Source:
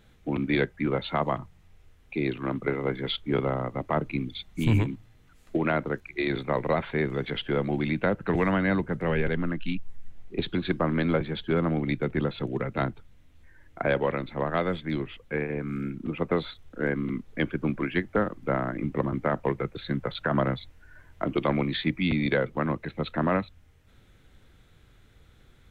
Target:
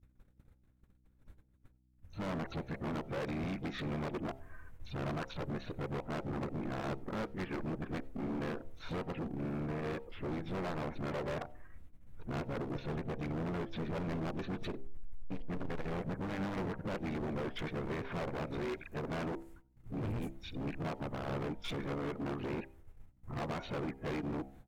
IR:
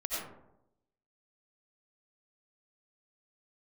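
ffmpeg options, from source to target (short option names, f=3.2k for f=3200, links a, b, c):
-filter_complex "[0:a]areverse,agate=range=-58dB:threshold=-52dB:ratio=16:detection=peak,asplit=4[a][b][c][d];[b]asetrate=29433,aresample=44100,atempo=1.49831,volume=-10dB[e];[c]asetrate=35002,aresample=44100,atempo=1.25992,volume=-13dB[f];[d]asetrate=66075,aresample=44100,atempo=0.66742,volume=-17dB[g];[a][e][f][g]amix=inputs=4:normalize=0,equalizer=f=3.7k:t=o:w=2:g=-12.5,acompressor=threshold=-29dB:ratio=3,asoftclip=type=hard:threshold=-35dB,bandreject=f=64.06:t=h:w=4,bandreject=f=128.12:t=h:w=4,bandreject=f=192.18:t=h:w=4,bandreject=f=256.24:t=h:w=4,bandreject=f=320.3:t=h:w=4,bandreject=f=384.36:t=h:w=4,bandreject=f=448.42:t=h:w=4,bandreject=f=512.48:t=h:w=4,bandreject=f=576.54:t=h:w=4,bandreject=f=640.6:t=h:w=4,bandreject=f=704.66:t=h:w=4,bandreject=f=768.72:t=h:w=4,bandreject=f=832.78:t=h:w=4,bandreject=f=896.84:t=h:w=4,aeval=exprs='val(0)+0.000316*(sin(2*PI*60*n/s)+sin(2*PI*2*60*n/s)/2+sin(2*PI*3*60*n/s)/3+sin(2*PI*4*60*n/s)/4+sin(2*PI*5*60*n/s)/5)':c=same,asetrate=45938,aresample=44100,asplit=2[h][i];[1:a]atrim=start_sample=2205,afade=t=out:st=0.15:d=0.01,atrim=end_sample=7056[j];[i][j]afir=irnorm=-1:irlink=0,volume=-26.5dB[k];[h][k]amix=inputs=2:normalize=0"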